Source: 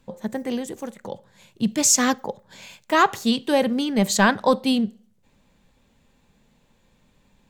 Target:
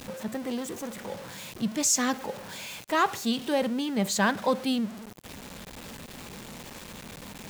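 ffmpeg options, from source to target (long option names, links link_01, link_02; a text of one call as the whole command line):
ffmpeg -i in.wav -af "aeval=exprs='val(0)+0.5*0.0398*sgn(val(0))':channel_layout=same,highpass=frequency=76:poles=1,volume=-7.5dB" out.wav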